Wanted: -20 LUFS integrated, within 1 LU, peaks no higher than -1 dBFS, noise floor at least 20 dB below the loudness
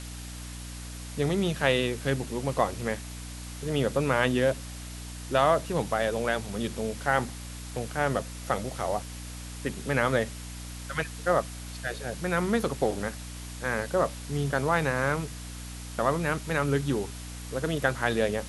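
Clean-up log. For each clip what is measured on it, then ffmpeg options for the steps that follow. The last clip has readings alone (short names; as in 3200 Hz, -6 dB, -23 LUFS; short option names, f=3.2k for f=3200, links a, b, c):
hum 60 Hz; harmonics up to 300 Hz; hum level -38 dBFS; noise floor -40 dBFS; noise floor target -49 dBFS; loudness -28.5 LUFS; peak -8.5 dBFS; loudness target -20.0 LUFS
-> -af "bandreject=f=60:t=h:w=6,bandreject=f=120:t=h:w=6,bandreject=f=180:t=h:w=6,bandreject=f=240:t=h:w=6,bandreject=f=300:t=h:w=6"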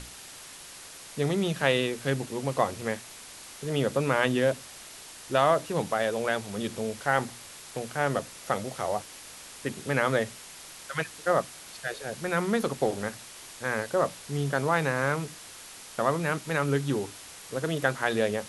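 hum none; noise floor -46 dBFS; noise floor target -49 dBFS
-> -af "afftdn=nr=6:nf=-46"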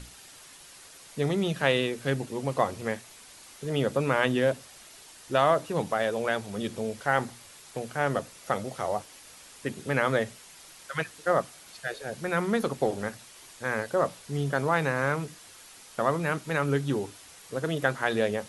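noise floor -50 dBFS; loudness -29.0 LUFS; peak -8.5 dBFS; loudness target -20.0 LUFS
-> -af "volume=9dB,alimiter=limit=-1dB:level=0:latency=1"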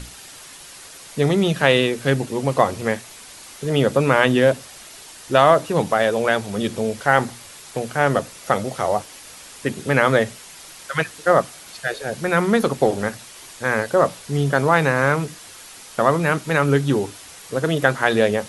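loudness -20.0 LUFS; peak -1.0 dBFS; noise floor -41 dBFS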